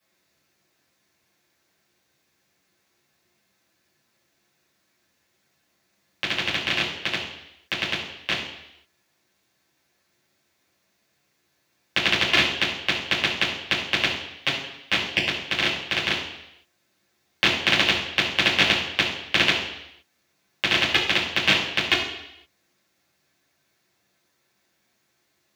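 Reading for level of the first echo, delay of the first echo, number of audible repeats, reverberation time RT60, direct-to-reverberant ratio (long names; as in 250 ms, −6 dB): no echo audible, no echo audible, no echo audible, 0.80 s, −7.5 dB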